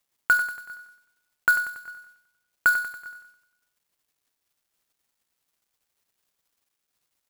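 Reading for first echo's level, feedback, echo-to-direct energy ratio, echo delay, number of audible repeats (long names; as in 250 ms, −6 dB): −10.5 dB, 53%, −9.0 dB, 94 ms, 5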